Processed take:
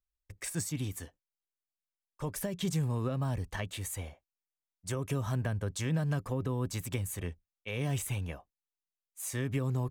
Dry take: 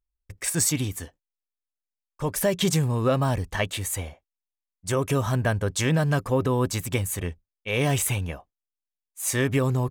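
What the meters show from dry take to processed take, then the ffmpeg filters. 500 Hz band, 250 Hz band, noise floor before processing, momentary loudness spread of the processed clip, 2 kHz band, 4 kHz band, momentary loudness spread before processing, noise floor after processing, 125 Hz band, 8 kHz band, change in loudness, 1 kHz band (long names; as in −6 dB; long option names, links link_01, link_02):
−12.5 dB, −9.0 dB, below −85 dBFS, 10 LU, −12.0 dB, −12.0 dB, 11 LU, below −85 dBFS, −7.5 dB, −12.0 dB, −9.5 dB, −12.5 dB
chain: -filter_complex "[0:a]acrossover=split=250[link_01][link_02];[link_02]acompressor=threshold=-29dB:ratio=6[link_03];[link_01][link_03]amix=inputs=2:normalize=0,volume=-7dB"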